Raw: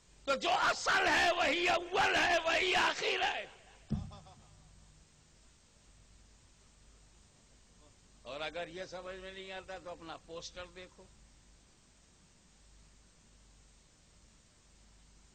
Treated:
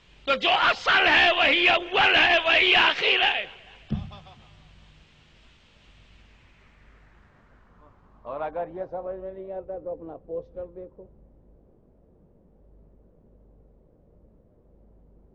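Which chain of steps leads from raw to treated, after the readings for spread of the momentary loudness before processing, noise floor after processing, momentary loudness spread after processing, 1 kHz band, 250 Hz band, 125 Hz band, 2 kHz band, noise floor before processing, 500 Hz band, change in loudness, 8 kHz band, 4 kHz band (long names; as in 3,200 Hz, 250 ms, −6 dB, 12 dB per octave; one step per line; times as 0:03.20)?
19 LU, −58 dBFS, 20 LU, +8.5 dB, +7.5 dB, +7.5 dB, +11.5 dB, −65 dBFS, +8.5 dB, +12.0 dB, can't be measured, +13.5 dB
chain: low-pass filter sweep 3,000 Hz → 500 Hz, 0:06.05–0:09.78
level +7.5 dB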